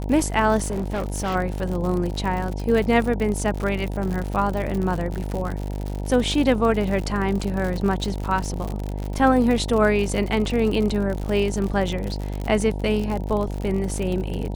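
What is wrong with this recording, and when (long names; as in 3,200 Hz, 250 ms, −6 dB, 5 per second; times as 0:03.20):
mains buzz 50 Hz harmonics 19 −28 dBFS
surface crackle 74 per second −26 dBFS
0:00.62–0:01.36: clipping −21.5 dBFS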